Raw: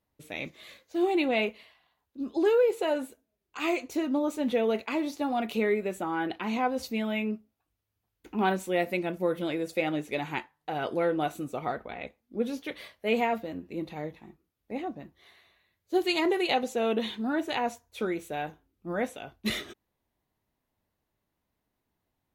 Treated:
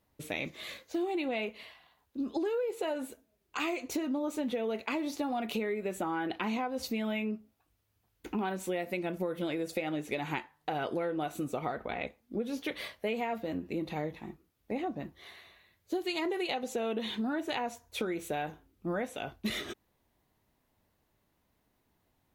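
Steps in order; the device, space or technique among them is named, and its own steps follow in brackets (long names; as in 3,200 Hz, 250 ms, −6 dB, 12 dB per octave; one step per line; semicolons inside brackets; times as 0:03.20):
serial compression, peaks first (downward compressor, threshold −33 dBFS, peak gain reduction 13 dB; downward compressor 1.5 to 1, threshold −43 dBFS, peak gain reduction 5 dB)
level +6.5 dB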